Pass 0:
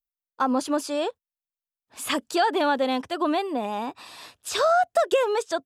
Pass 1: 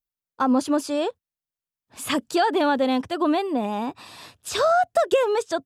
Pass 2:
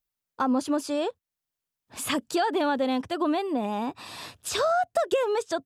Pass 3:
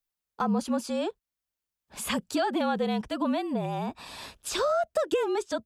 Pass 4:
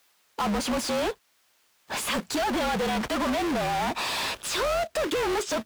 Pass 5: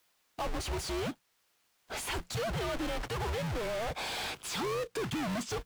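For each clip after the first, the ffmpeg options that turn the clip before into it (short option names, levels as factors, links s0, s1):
-af "equalizer=f=110:t=o:w=2.5:g=10"
-af "acompressor=threshold=0.00891:ratio=1.5,volume=1.58"
-af "afreqshift=-47,volume=0.794"
-filter_complex "[0:a]acompressor=threshold=0.0178:ratio=1.5,acrusher=bits=3:mode=log:mix=0:aa=0.000001,asplit=2[s0][s1];[s1]highpass=f=720:p=1,volume=63.1,asoftclip=type=tanh:threshold=0.0944[s2];[s0][s2]amix=inputs=2:normalize=0,lowpass=f=4100:p=1,volume=0.501"
-af "afreqshift=-180,volume=0.422"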